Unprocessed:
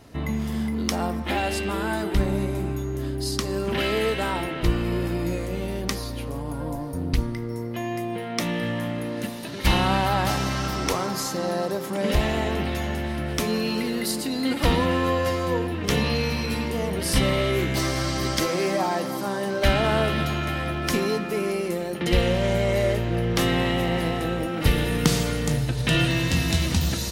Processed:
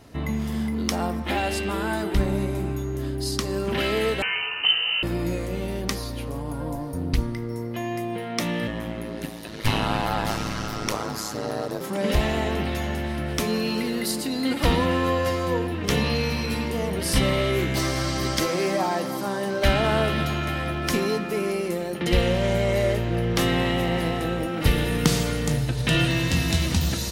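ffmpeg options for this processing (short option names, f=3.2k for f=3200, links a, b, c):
-filter_complex "[0:a]asettb=1/sr,asplit=3[a][b][c];[a]atrim=end=4.224[d];[b]atrim=start=4.22:end=5.03,asetpts=PTS-STARTPTS,afade=t=in:d=0.004:c=qsin,afade=t=out:st=0.806:d=0.004:c=qsin,lowpass=f=2.6k:t=q:w=0.5098,lowpass=f=2.6k:t=q:w=0.6013,lowpass=f=2.6k:t=q:w=0.9,lowpass=f=2.6k:t=q:w=2.563,afreqshift=-3100[e];[c]atrim=start=5.026[f];[d][e]acrossfade=d=0.004:c1=hsin:c2=qsin[g];[g][f]acrossfade=d=0.004:c1=qsin:c2=hsin,asettb=1/sr,asplit=3[h][i][j];[h]atrim=end=8.674[k];[i]atrim=start=8.67:end=11.81,asetpts=PTS-STARTPTS,afade=t=in:d=0.004:c=qsin,afade=t=out:st=3.136:d=0.004:c=qsin,aeval=exprs='val(0)*sin(2*PI*54*n/s)':c=same[l];[j]atrim=start=11.806[m];[k][l]acrossfade=d=0.004:c1=hsin:c2=qsin[n];[n][m]acrossfade=d=0.004:c1=qsin:c2=hsin"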